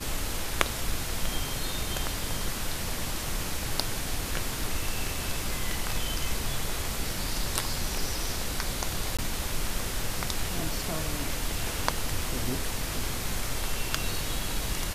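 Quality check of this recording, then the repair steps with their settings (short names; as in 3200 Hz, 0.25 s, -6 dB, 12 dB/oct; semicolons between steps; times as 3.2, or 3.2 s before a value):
9.17–9.19 gap 16 ms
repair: interpolate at 9.17, 16 ms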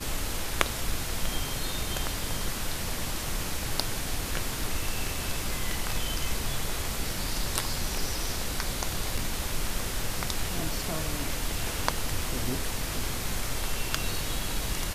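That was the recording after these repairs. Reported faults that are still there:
none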